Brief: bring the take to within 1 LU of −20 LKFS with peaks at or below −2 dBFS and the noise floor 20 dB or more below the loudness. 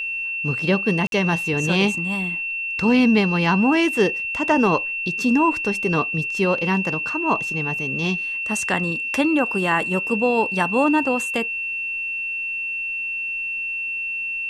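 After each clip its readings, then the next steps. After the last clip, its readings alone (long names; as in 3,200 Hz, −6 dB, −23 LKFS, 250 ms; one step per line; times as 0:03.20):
number of dropouts 1; longest dropout 52 ms; interfering tone 2,700 Hz; level of the tone −24 dBFS; integrated loudness −20.5 LKFS; sample peak −5.5 dBFS; target loudness −20.0 LKFS
→ repair the gap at 0:01.07, 52 ms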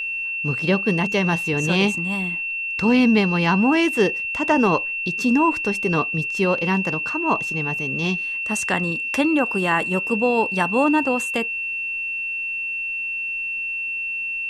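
number of dropouts 0; interfering tone 2,700 Hz; level of the tone −24 dBFS
→ notch filter 2,700 Hz, Q 30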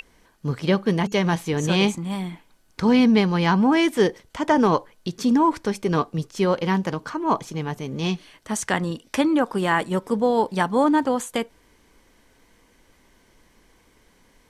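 interfering tone none found; integrated loudness −22.0 LKFS; sample peak −6.0 dBFS; target loudness −20.0 LKFS
→ level +2 dB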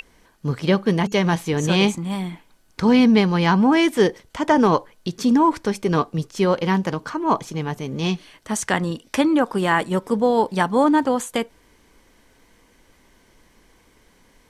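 integrated loudness −20.0 LKFS; sample peak −4.0 dBFS; background noise floor −57 dBFS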